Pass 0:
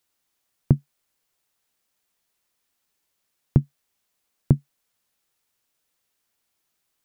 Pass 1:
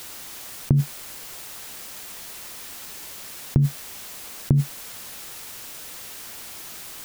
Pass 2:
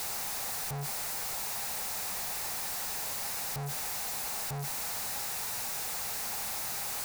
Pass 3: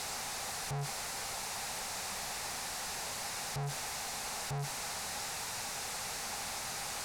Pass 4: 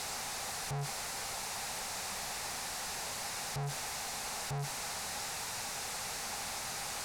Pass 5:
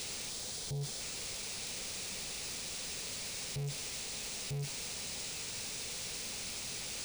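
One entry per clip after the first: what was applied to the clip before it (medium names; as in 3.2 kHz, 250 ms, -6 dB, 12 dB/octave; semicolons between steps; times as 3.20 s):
level flattener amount 100%; trim -2.5 dB
one-bit comparator; graphic EQ with 31 bands 315 Hz -12 dB, 800 Hz +9 dB, 3.15 kHz -7 dB; trim -6.5 dB
low-pass 8.5 kHz 12 dB/octave
no audible change
high-order bell 1.1 kHz -15.5 dB; time-frequency box 0.30–1.00 s, 1–3.1 kHz -13 dB; careless resampling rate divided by 3×, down none, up hold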